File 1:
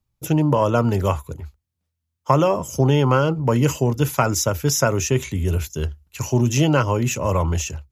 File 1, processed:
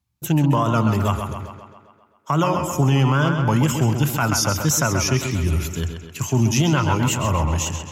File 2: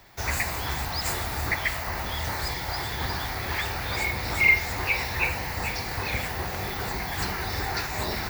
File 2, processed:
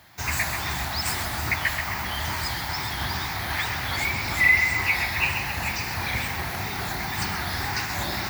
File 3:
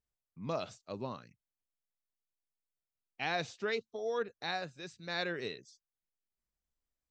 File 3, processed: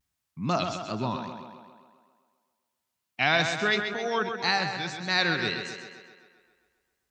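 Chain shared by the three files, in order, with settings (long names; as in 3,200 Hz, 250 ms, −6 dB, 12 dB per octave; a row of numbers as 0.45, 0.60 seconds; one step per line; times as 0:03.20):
high-pass filter 69 Hz
parametric band 480 Hz −10.5 dB 0.75 octaves
tape wow and flutter 120 cents
on a send: tape delay 132 ms, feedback 63%, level −6.5 dB, low-pass 5,900 Hz
on the sum: boost into a limiter +10 dB
normalise the peak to −9 dBFS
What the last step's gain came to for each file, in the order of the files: −8.0, −8.0, +2.5 decibels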